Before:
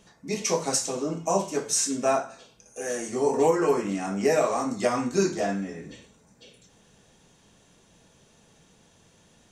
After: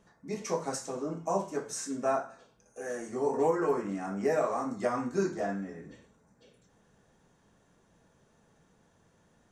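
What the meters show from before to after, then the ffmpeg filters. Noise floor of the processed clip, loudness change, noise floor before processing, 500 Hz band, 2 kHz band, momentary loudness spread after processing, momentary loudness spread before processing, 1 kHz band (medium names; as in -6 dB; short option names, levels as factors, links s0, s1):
-67 dBFS, -6.5 dB, -60 dBFS, -5.5 dB, -6.5 dB, 13 LU, 12 LU, -5.0 dB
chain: -af "highshelf=f=2100:t=q:w=1.5:g=-7,volume=0.501"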